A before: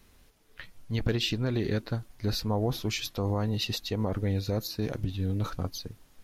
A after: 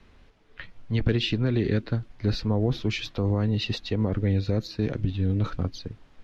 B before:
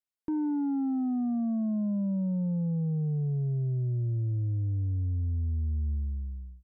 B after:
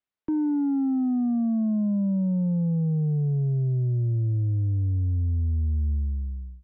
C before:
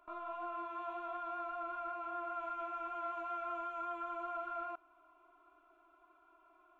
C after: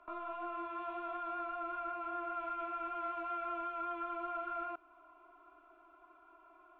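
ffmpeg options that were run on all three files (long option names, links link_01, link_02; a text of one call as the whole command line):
ffmpeg -i in.wav -filter_complex "[0:a]lowpass=3200,acrossover=split=260|560|1300[link_01][link_02][link_03][link_04];[link_03]acompressor=threshold=-55dB:ratio=6[link_05];[link_01][link_02][link_05][link_04]amix=inputs=4:normalize=0,volume=5dB" out.wav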